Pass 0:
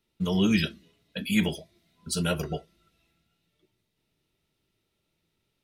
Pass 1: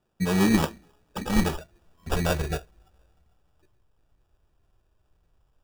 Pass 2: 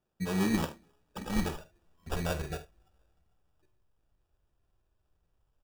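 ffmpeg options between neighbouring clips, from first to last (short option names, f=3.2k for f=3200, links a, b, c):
-af "acrusher=samples=21:mix=1:aa=0.000001,asubboost=boost=11:cutoff=61,volume=3dB"
-af "aecho=1:1:48|75:0.211|0.141,volume=-8dB"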